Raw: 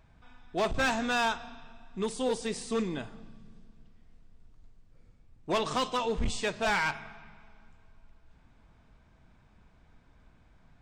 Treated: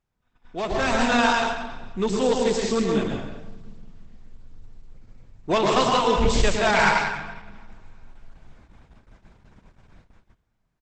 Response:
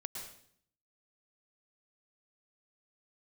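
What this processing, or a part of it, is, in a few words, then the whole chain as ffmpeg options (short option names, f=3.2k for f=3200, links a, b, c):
speakerphone in a meeting room: -filter_complex "[1:a]atrim=start_sample=2205[a];[0:a][a]afir=irnorm=-1:irlink=0,asplit=2[b][c];[c]adelay=180,highpass=300,lowpass=3.4k,asoftclip=type=hard:threshold=-24.5dB,volume=-10dB[d];[b][d]amix=inputs=2:normalize=0,dynaudnorm=f=200:g=9:m=9dB,agate=range=-18dB:threshold=-50dB:ratio=16:detection=peak,volume=2.5dB" -ar 48000 -c:a libopus -b:a 12k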